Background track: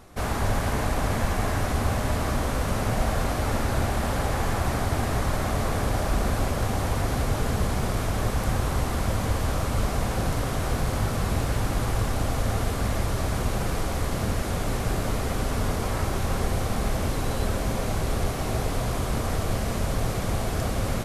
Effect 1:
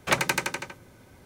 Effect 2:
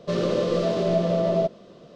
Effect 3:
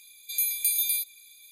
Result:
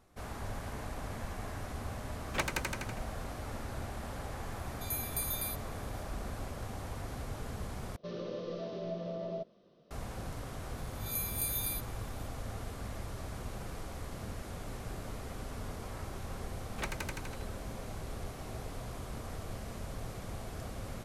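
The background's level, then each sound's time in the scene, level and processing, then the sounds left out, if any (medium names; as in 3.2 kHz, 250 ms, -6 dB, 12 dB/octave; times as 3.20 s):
background track -15.5 dB
2.27 s: add 1 -10.5 dB
4.52 s: add 3 -11.5 dB
7.96 s: replace with 2 -16.5 dB + Chebyshev low-pass 6 kHz, order 5
10.77 s: add 3 -11 dB + reverse spectral sustain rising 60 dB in 0.41 s
16.71 s: add 1 -16 dB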